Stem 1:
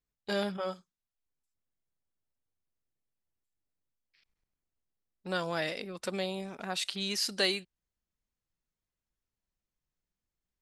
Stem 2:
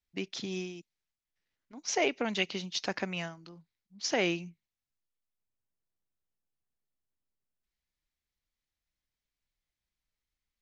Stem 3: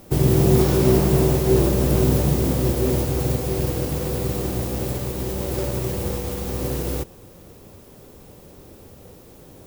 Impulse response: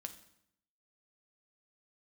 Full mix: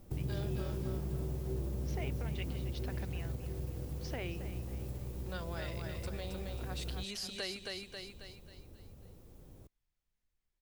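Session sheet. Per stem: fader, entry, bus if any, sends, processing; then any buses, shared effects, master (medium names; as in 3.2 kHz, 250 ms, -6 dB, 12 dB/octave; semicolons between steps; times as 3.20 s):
-4.5 dB, 0.00 s, no send, echo send -4.5 dB, none
-5.5 dB, 0.00 s, no send, echo send -13.5 dB, low-pass 4.1 kHz
-17.0 dB, 0.00 s, no send, no echo send, bass shelf 210 Hz +8 dB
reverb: none
echo: feedback delay 270 ms, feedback 40%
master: bass shelf 61 Hz +10.5 dB; compression 2:1, threshold -42 dBFS, peak gain reduction 11.5 dB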